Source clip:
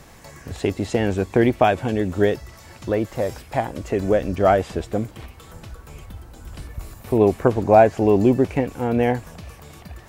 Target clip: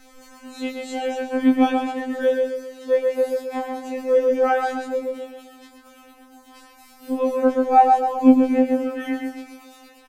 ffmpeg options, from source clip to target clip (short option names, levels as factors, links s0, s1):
-filter_complex "[0:a]afftfilt=real='re':imag='-im':win_size=2048:overlap=0.75,asplit=2[s0][s1];[s1]adelay=131,lowpass=f=3300:p=1,volume=0.708,asplit=2[s2][s3];[s3]adelay=131,lowpass=f=3300:p=1,volume=0.45,asplit=2[s4][s5];[s5]adelay=131,lowpass=f=3300:p=1,volume=0.45,asplit=2[s6][s7];[s7]adelay=131,lowpass=f=3300:p=1,volume=0.45,asplit=2[s8][s9];[s9]adelay=131,lowpass=f=3300:p=1,volume=0.45,asplit=2[s10][s11];[s11]adelay=131,lowpass=f=3300:p=1,volume=0.45[s12];[s0][s2][s4][s6][s8][s10][s12]amix=inputs=7:normalize=0,afftfilt=real='re*3.46*eq(mod(b,12),0)':imag='im*3.46*eq(mod(b,12),0)':win_size=2048:overlap=0.75,volume=1.19"